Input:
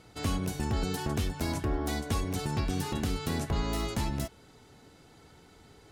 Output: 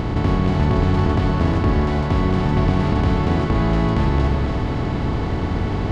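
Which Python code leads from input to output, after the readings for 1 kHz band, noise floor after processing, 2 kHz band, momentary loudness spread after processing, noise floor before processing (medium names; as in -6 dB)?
+13.5 dB, -23 dBFS, +11.5 dB, 5 LU, -57 dBFS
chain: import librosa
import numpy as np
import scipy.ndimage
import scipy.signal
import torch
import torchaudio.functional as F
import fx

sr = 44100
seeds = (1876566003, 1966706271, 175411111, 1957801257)

y = fx.bin_compress(x, sr, power=0.2)
y = fx.spacing_loss(y, sr, db_at_10k=34)
y = fx.echo_split(y, sr, split_hz=430.0, low_ms=102, high_ms=280, feedback_pct=52, wet_db=-6.0)
y = y * 10.0 ** (7.5 / 20.0)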